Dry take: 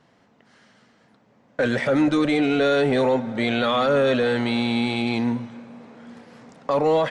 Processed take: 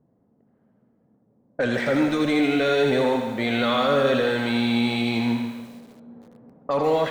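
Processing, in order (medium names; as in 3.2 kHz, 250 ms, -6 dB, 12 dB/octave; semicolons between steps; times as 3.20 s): level-controlled noise filter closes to 400 Hz, open at -19 dBFS; thinning echo 81 ms, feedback 62%, high-pass 860 Hz, level -4 dB; bit-crushed delay 144 ms, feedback 35%, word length 7-bit, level -10 dB; trim -2 dB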